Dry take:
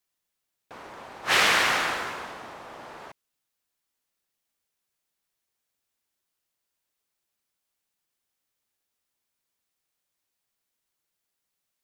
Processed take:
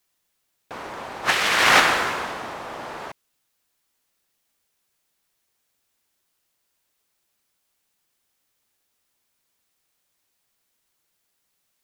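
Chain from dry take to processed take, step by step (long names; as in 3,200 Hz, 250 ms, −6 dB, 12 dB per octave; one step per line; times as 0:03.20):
0:01.29–0:01.80: compressor whose output falls as the input rises −25 dBFS, ratio −0.5
level +8.5 dB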